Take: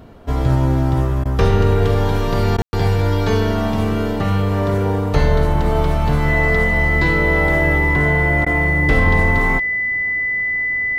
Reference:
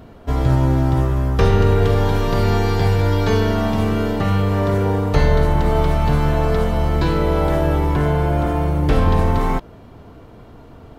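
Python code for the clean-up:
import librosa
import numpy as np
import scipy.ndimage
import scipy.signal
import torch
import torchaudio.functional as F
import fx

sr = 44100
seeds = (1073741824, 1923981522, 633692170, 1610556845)

y = fx.notch(x, sr, hz=2000.0, q=30.0)
y = fx.fix_ambience(y, sr, seeds[0], print_start_s=0.0, print_end_s=0.5, start_s=2.62, end_s=2.73)
y = fx.fix_interpolate(y, sr, at_s=(1.24, 2.57, 8.45), length_ms=12.0)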